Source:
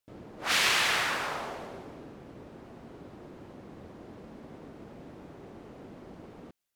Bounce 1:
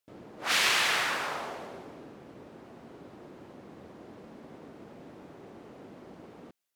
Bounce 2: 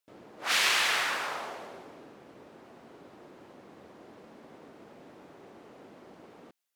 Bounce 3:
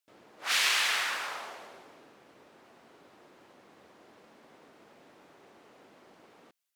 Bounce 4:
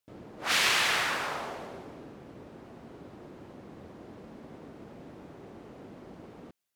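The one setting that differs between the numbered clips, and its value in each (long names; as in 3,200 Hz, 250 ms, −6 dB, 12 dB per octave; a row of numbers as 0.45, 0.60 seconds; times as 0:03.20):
high-pass filter, corner frequency: 160, 440, 1,300, 52 Hertz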